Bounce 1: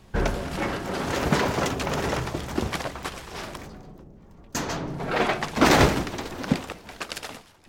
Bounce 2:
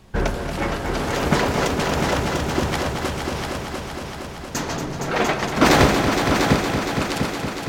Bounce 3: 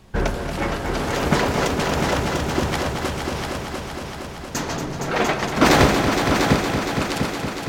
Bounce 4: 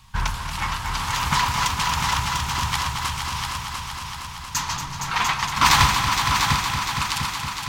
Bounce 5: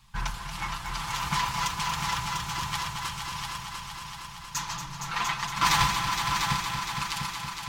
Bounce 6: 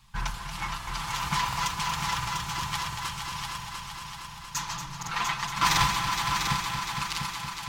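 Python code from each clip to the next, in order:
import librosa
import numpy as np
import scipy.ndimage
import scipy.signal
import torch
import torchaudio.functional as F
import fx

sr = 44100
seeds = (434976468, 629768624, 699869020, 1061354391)

y1 = fx.echo_heads(x, sr, ms=232, heads='all three', feedback_pct=64, wet_db=-9)
y1 = y1 * librosa.db_to_amplitude(2.5)
y2 = y1
y3 = fx.curve_eq(y2, sr, hz=(120.0, 370.0, 620.0, 980.0, 1500.0, 3200.0), db=(0, -22, -20, 8, -1, 5))
y3 = y3 * librosa.db_to_amplitude(-1.0)
y4 = y3 + 0.65 * np.pad(y3, (int(5.9 * sr / 1000.0), 0))[:len(y3)]
y4 = y4 * librosa.db_to_amplitude(-8.5)
y5 = fx.buffer_crackle(y4, sr, first_s=0.78, period_s=0.7, block=2048, kind='repeat')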